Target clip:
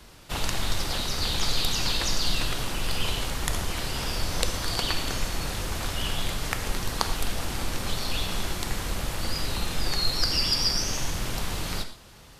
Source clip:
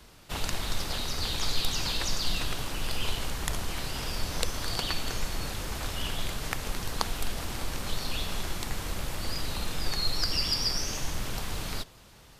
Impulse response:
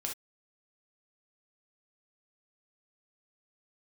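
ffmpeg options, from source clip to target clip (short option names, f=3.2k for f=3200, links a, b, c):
-filter_complex "[0:a]asplit=2[a][b];[1:a]atrim=start_sample=2205,asetrate=25578,aresample=44100[c];[b][c]afir=irnorm=-1:irlink=0,volume=-7.5dB[d];[a][d]amix=inputs=2:normalize=0"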